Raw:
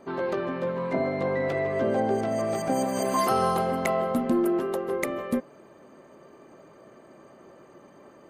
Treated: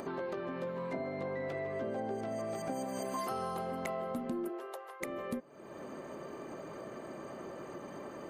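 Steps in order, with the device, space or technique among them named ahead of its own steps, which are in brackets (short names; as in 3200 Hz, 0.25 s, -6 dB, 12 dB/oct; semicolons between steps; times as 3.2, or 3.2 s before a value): 0.57–0.97 high shelf 5600 Hz +6 dB; upward and downward compression (upward compressor, threshold -29 dBFS; compressor 3:1, threshold -32 dBFS, peak gain reduction 9.5 dB); 4.48–5 HPF 340 Hz -> 860 Hz 24 dB/oct; gain -4.5 dB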